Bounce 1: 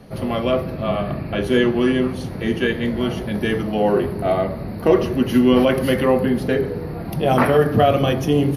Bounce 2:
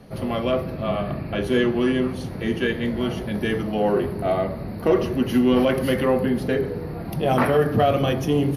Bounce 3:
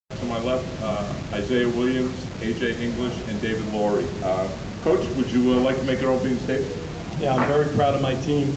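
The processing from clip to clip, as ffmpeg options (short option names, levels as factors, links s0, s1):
-af "acontrast=23,volume=0.422"
-af "acrusher=bits=5:mix=0:aa=0.000001,volume=0.841" -ar 16000 -c:a libvorbis -b:a 96k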